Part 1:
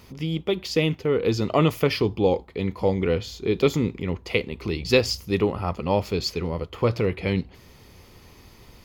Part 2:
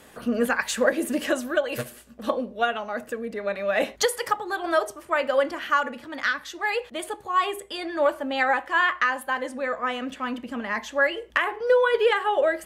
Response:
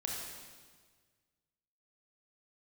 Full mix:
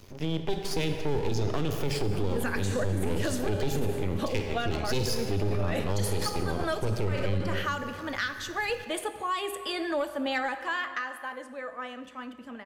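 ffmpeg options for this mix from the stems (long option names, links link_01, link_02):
-filter_complex "[0:a]equalizer=frequency=100:width_type=o:width=0.33:gain=12,equalizer=frequency=400:width_type=o:width=0.33:gain=8,equalizer=frequency=6300:width_type=o:width=0.33:gain=5,aeval=exprs='max(val(0),0)':channel_layout=same,volume=-4dB,asplit=3[link_01][link_02][link_03];[link_02]volume=-5dB[link_04];[1:a]acontrast=36,adelay=1950,volume=-7dB,afade=type=out:start_time=10.41:duration=0.71:silence=0.281838,asplit=2[link_05][link_06];[link_06]volume=-10.5dB[link_07];[link_03]apad=whole_len=643922[link_08];[link_05][link_08]sidechaincompress=threshold=-30dB:ratio=8:attack=5.1:release=121[link_09];[2:a]atrim=start_sample=2205[link_10];[link_04][link_07]amix=inputs=2:normalize=0[link_11];[link_11][link_10]afir=irnorm=-1:irlink=0[link_12];[link_01][link_09][link_12]amix=inputs=3:normalize=0,acrossover=split=320|3000[link_13][link_14][link_15];[link_14]acompressor=threshold=-29dB:ratio=6[link_16];[link_13][link_16][link_15]amix=inputs=3:normalize=0,alimiter=limit=-19dB:level=0:latency=1:release=10"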